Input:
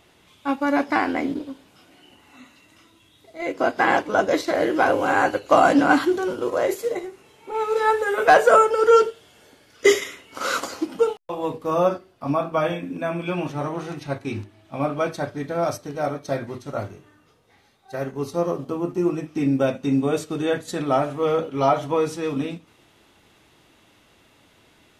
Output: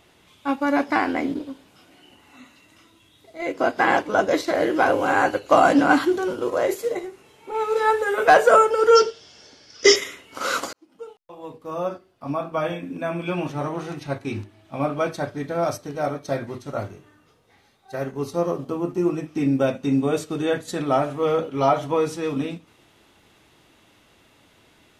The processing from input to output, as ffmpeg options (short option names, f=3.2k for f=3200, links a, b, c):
-filter_complex "[0:a]asettb=1/sr,asplit=3[a][b][c];[a]atrim=end=8.954[d];[b]atrim=start=8.95:end=9.96,asetpts=PTS-STARTPTS,afade=t=in:d=0.004:c=qsin,afade=t=out:st=1.006:d=0.004:c=qsin,lowpass=f=5.4k:t=q:w=7.7[e];[c]atrim=start=9.956[f];[d][e]acrossfade=d=0.004:c1=hsin:c2=qsin[g];[g][f]acrossfade=d=0.004:c1=qsin:c2=hsin,asplit=2[h][i];[h]atrim=end=10.73,asetpts=PTS-STARTPTS,afade=t=out:st=10.726:d=0.004:c=hsin[j];[i]atrim=start=10.73,asetpts=PTS-STARTPTS,afade=t=in:d=2.58[k];[j][k]concat=n=2:v=0:a=1"